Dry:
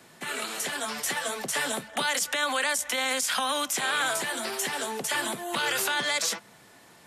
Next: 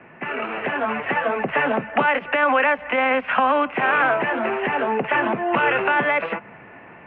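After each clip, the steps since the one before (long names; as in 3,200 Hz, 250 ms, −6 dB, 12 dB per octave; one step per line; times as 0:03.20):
dynamic equaliser 2,000 Hz, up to −5 dB, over −40 dBFS, Q 1.3
automatic gain control gain up to 3.5 dB
Chebyshev low-pass filter 2,700 Hz, order 6
level +9 dB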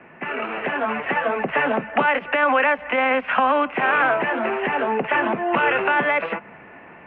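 parametric band 120 Hz −7 dB 0.37 octaves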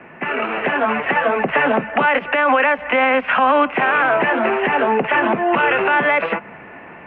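brickwall limiter −12 dBFS, peak gain reduction 5.5 dB
level +5.5 dB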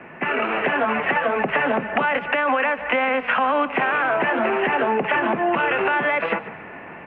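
downward compressor, threshold −17 dBFS, peak gain reduction 6.5 dB
echo with shifted repeats 148 ms, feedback 36%, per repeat −30 Hz, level −16 dB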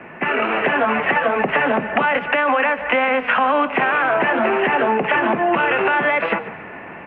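flanger 1.9 Hz, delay 9 ms, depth 1.4 ms, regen −87%
level +7.5 dB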